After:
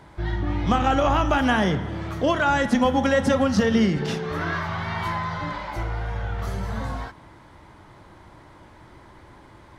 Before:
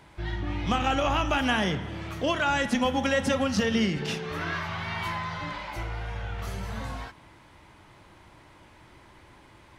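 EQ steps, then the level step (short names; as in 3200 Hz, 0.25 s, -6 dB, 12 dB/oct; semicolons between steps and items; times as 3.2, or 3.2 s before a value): bell 2600 Hz -7 dB 0.55 oct; high shelf 3500 Hz -7 dB; +6.0 dB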